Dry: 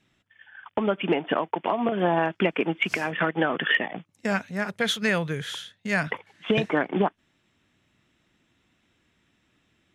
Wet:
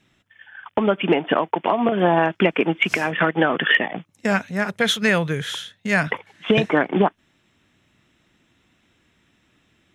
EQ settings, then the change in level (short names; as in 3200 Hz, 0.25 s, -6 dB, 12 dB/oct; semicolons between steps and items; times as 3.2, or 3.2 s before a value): notch 4600 Hz, Q 16; +5.5 dB